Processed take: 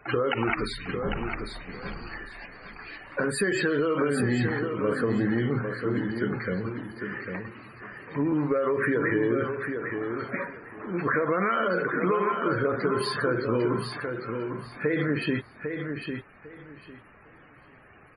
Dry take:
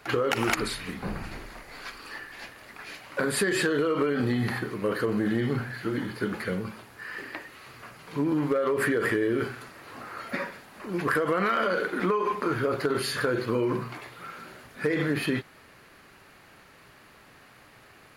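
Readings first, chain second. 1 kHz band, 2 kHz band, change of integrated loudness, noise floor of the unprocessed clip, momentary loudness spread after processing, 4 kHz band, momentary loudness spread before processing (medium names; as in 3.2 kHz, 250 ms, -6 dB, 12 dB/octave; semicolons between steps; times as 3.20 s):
+0.5 dB, +0.5 dB, 0.0 dB, -54 dBFS, 15 LU, -2.5 dB, 17 LU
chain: bass shelf 75 Hz +4.5 dB; loudest bins only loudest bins 64; feedback delay 801 ms, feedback 21%, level -6.5 dB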